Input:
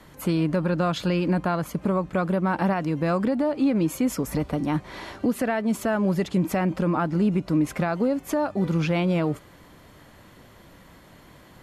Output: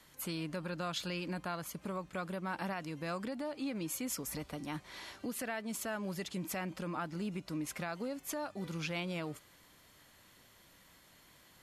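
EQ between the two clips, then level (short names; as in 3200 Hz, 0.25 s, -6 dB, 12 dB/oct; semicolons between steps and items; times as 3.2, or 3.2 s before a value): pre-emphasis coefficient 0.9; high shelf 7700 Hz -10.5 dB; +2.5 dB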